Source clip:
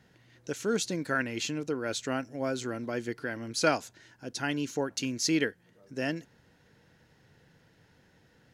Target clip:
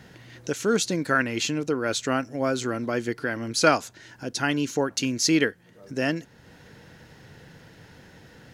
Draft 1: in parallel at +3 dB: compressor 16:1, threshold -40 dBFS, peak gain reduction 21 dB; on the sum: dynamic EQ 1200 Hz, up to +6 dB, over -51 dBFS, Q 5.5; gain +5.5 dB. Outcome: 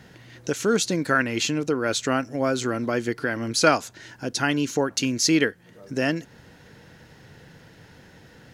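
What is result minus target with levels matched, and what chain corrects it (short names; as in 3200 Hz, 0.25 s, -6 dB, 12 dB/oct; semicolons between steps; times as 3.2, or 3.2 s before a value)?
compressor: peak gain reduction -11 dB
in parallel at +3 dB: compressor 16:1, threshold -51.5 dBFS, peak gain reduction 31.5 dB; on the sum: dynamic EQ 1200 Hz, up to +6 dB, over -51 dBFS, Q 5.5; gain +5.5 dB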